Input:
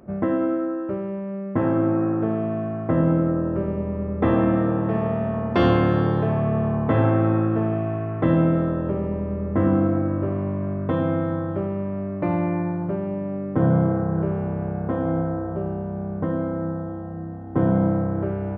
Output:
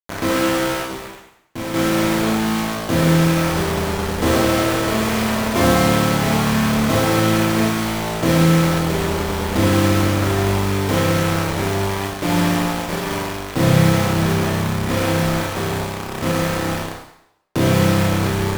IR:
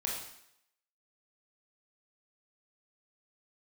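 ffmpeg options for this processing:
-filter_complex "[0:a]asettb=1/sr,asplit=3[a][b][c];[a]atrim=end=12.544[d];[b]atrim=start=12.54:end=13.04,asetpts=PTS-STARTPTS,afade=t=in:d=0.004:c=qsin,afade=t=out:st=0.496:d=0.004:c=qsin,lowshelf=f=92:g=-12[e];[c]atrim=start=13.036[f];[d][e]acrossfade=d=0.004:c1=hsin:c2=qsin[g];[g][f]acrossfade=d=0.004:c1=qsin:c2=hsin,acrusher=bits=3:mix=0:aa=0.000001,asplit=3[h][i][j];[h]afade=t=out:st=0.84:d=0.02[k];[i]volume=24.5dB,asoftclip=hard,volume=-24.5dB,afade=t=in:st=0.84:d=0.02,afade=t=out:st=1.73:d=0.02[l];[j]afade=t=in:st=1.73:d=0.02[m];[k][l][m]amix=inputs=3:normalize=0[n];[1:a]atrim=start_sample=2205,asetrate=43218,aresample=44100[o];[n][o]afir=irnorm=-1:irlink=0"

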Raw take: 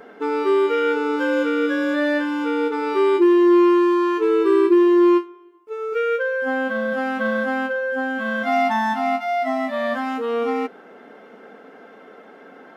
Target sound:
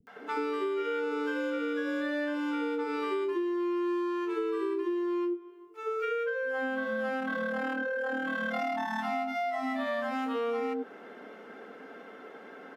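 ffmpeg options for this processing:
-filter_complex "[0:a]asettb=1/sr,asplit=3[a][b][c];[a]atrim=end=7.134[d];[b]atrim=start=7.13:end=8.92,asetpts=PTS-STARTPTS,afade=t=in:d=0.004:c=qsin,afade=t=out:st=1.786:d=0.004:c=qsin,tremolo=f=38:d=0.667[e];[c]atrim=start=8.916[f];[d][e]acrossfade=d=0.004:c1=hsin:c2=qsin[g];[g][f]acrossfade=d=0.004:c1=qsin:c2=hsin,acrossover=split=170|670[h][i][j];[j]adelay=70[k];[i]adelay=160[l];[h][l][k]amix=inputs=3:normalize=0,acompressor=threshold=-27dB:ratio=10,volume=-1.5dB"

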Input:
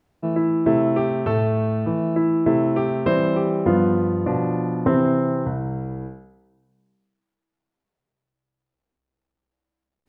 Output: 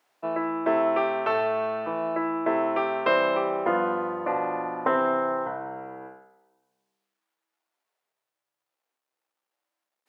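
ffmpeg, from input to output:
-af "highpass=750,volume=4.5dB"

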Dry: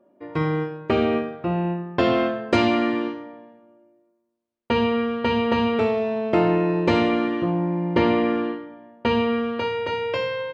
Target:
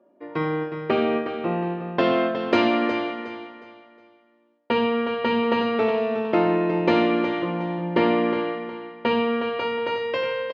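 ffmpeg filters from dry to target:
-af "highpass=210,lowpass=4.5k,aecho=1:1:363|726|1089|1452:0.335|0.107|0.0343|0.011"

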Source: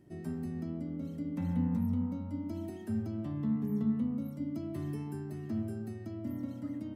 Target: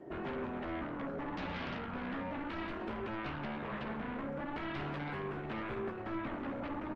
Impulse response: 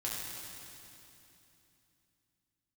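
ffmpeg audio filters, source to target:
-filter_complex "[0:a]lowpass=1k,lowshelf=f=150:g=-8.5,acrossover=split=400[a][b];[a]acompressor=threshold=-44dB:ratio=12[c];[b]aeval=exprs='0.00944*sin(PI/2*5.62*val(0)/0.00944)':c=same[d];[c][d]amix=inputs=2:normalize=0,asplit=2[e][f];[f]adelay=15,volume=-6dB[g];[e][g]amix=inputs=2:normalize=0,aecho=1:1:583|1166|1749|2332:0.1|0.056|0.0314|0.0176,volume=2.5dB" -ar 48000 -c:a libopus -b:a 20k

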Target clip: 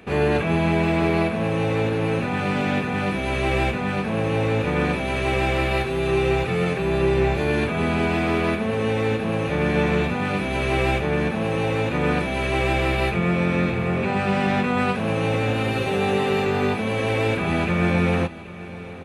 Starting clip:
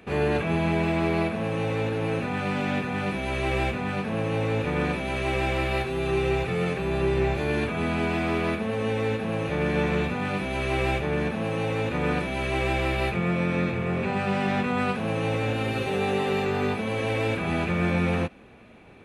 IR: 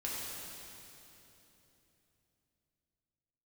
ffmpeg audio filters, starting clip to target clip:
-af "aecho=1:1:781|1562|2343|3124:0.141|0.0692|0.0339|0.0166,volume=4dB"

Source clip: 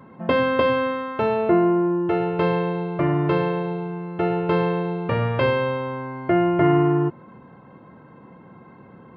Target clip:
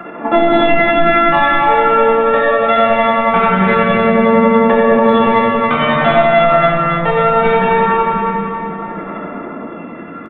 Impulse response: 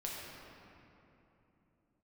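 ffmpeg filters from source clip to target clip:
-filter_complex "[0:a]equalizer=f=100:t=o:w=0.39:g=-7.5,bandreject=f=96.86:t=h:w=4,bandreject=f=193.72:t=h:w=4,bandreject=f=290.58:t=h:w=4,bandreject=f=387.44:t=h:w=4,acrossover=split=270|600[a][b][c];[b]acompressor=threshold=-34dB:ratio=8[d];[a][d][c]amix=inputs=3:normalize=0,atempo=0.89,tremolo=f=11:d=0.79,asplit=2[e][f];[f]highpass=f=720:p=1,volume=16dB,asoftclip=type=tanh:threshold=-11dB[g];[e][g]amix=inputs=2:normalize=0,lowpass=f=1.2k:p=1,volume=-6dB,aphaser=in_gain=1:out_gain=1:delay=2.1:decay=0.64:speed=0.22:type=sinusoidal,asetrate=57191,aresample=44100,atempo=0.771105,aresample=8000,aresample=44100,aecho=1:1:278|556|834|1112|1390|1668:0.422|0.211|0.105|0.0527|0.0264|0.0132[h];[1:a]atrim=start_sample=2205[i];[h][i]afir=irnorm=-1:irlink=0,alimiter=level_in=11dB:limit=-1dB:release=50:level=0:latency=1,volume=-1dB"

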